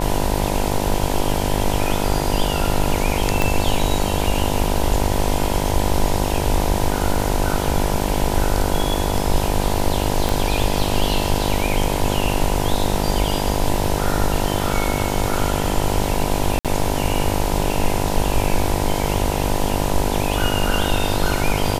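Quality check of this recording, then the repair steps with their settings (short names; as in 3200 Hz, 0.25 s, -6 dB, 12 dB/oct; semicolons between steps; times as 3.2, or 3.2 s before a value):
buzz 50 Hz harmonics 20 -23 dBFS
3.42 pop -4 dBFS
10.29 pop
16.59–16.65 gap 57 ms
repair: de-click; de-hum 50 Hz, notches 20; interpolate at 16.59, 57 ms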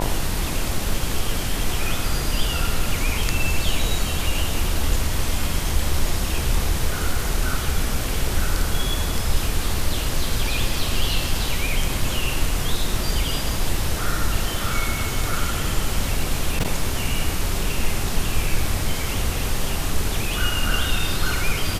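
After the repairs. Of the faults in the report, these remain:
3.42 pop
10.29 pop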